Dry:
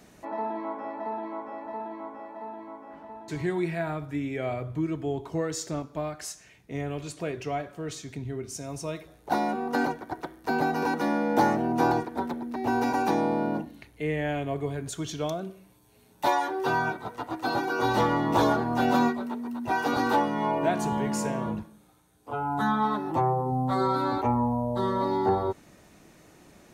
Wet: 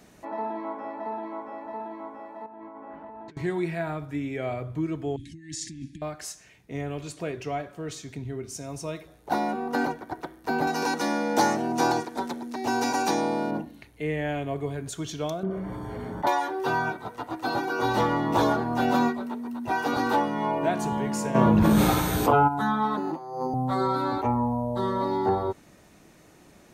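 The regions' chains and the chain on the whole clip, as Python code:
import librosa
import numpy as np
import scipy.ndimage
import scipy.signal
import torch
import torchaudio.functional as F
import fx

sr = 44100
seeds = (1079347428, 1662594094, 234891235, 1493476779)

y = fx.chain(x, sr, fx.lowpass(hz=2400.0, slope=12),
    fx.over_compress(threshold_db=-44.0, ratio=-1.0), at=(2.46, 3.37))
y = fx.chain(y, sr, fx.resample_bad(factor=2, down='none', up='filtered'),
    fx.over_compress(threshold_db=-37.0, ratio=-1.0),
    fx.brickwall_bandstop(low_hz=350.0, high_hz=1600.0), at=(5.16, 6.02))
y = fx.chain(y, sr, fx.highpass(hz=160.0, slope=6),
    fx.peak_eq(hz=6600.0, db=12.5, octaves=1.8), at=(10.67, 13.51))
y = fx.chain(y, sr, fx.savgol(points=41),
    fx.env_flatten(amount_pct=70), at=(15.43, 16.27))
y = fx.dmg_tone(y, sr, hz=12000.0, level_db=-64.0, at=(21.34, 22.47), fade=0.02)
y = fx.air_absorb(y, sr, metres=55.0, at=(21.34, 22.47), fade=0.02)
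y = fx.env_flatten(y, sr, amount_pct=100, at=(21.34, 22.47), fade=0.02)
y = fx.chain(y, sr, fx.steep_highpass(hz=150.0, slope=72),
    fx.over_compress(threshold_db=-30.0, ratio=-0.5),
    fx.resample_linear(factor=8), at=(22.97, 23.54))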